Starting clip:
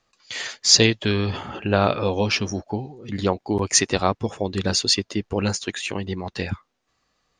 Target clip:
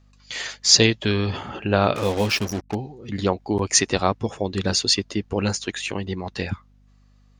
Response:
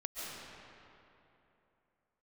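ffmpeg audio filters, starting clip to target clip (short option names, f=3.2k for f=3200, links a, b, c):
-filter_complex "[0:a]asettb=1/sr,asplit=3[a][b][c];[a]atrim=end=1.954[d];[b]atrim=start=1.95:end=2.75,asetpts=PTS-STARTPTS,afade=t=in:d=0.004:c=qsin,afade=t=out:st=0.796:d=0.004:c=qsin,acrusher=bits=4:mix=0:aa=0.5[e];[c]atrim=start=2.746[f];[d][e]acrossfade=d=0.004:c1=hsin:c2=qsin[g];[g][f]acrossfade=d=0.004:c1=qsin:c2=hsin,aeval=exprs='val(0)+0.002*(sin(2*PI*50*n/s)+sin(2*PI*2*50*n/s)/2+sin(2*PI*3*50*n/s)/3+sin(2*PI*4*50*n/s)/4+sin(2*PI*5*50*n/s)/5)':c=same"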